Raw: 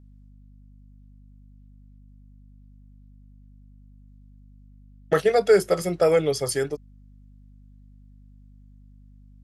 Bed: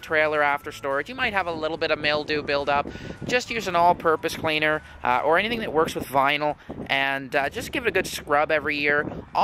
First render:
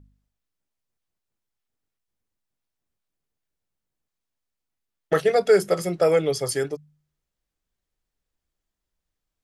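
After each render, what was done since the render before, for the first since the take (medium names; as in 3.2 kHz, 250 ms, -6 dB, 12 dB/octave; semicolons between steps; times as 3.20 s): de-hum 50 Hz, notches 5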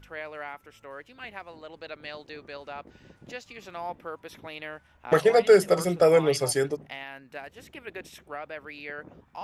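add bed -17 dB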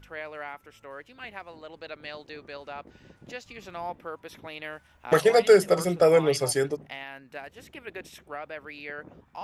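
3.43–3.90 s: bass shelf 150 Hz +7 dB; 4.64–5.53 s: treble shelf 3.9 kHz +7 dB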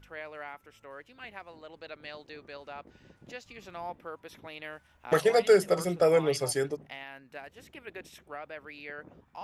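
trim -4 dB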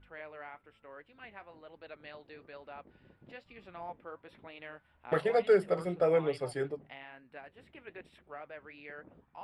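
boxcar filter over 7 samples; flange 1.1 Hz, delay 3 ms, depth 6.6 ms, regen -66%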